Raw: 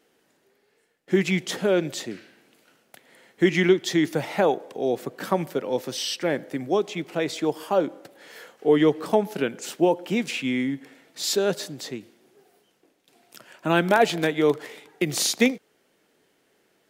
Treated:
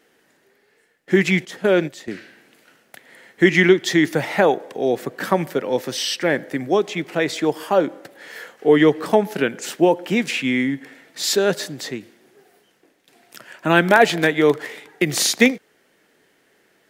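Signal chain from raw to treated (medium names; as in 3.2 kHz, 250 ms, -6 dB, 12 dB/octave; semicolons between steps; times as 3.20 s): 1.45–2.08 s: gate -26 dBFS, range -12 dB; peaking EQ 1.8 kHz +6 dB 0.58 oct; trim +4.5 dB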